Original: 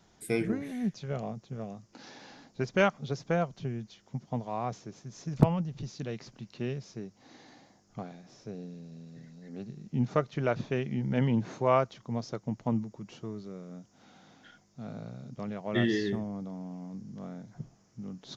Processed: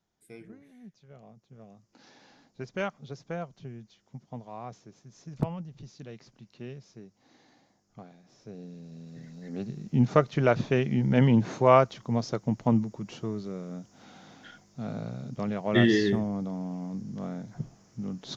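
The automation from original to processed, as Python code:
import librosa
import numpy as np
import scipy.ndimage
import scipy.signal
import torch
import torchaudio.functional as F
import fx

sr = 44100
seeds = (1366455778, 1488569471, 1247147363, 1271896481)

y = fx.gain(x, sr, db=fx.line((1.04, -18.0), (2.03, -7.0), (8.19, -7.0), (8.69, -0.5), (9.46, 6.0)))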